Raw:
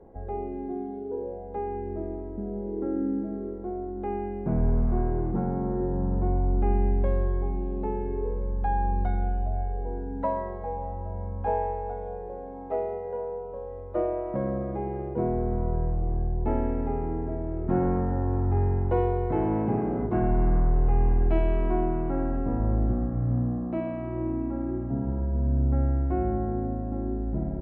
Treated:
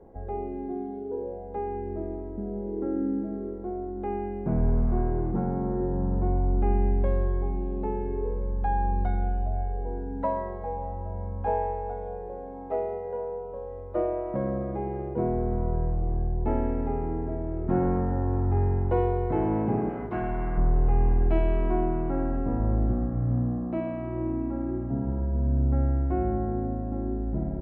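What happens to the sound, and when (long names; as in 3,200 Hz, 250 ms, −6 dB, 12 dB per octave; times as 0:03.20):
0:19.89–0:20.58: tilt shelving filter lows −7.5 dB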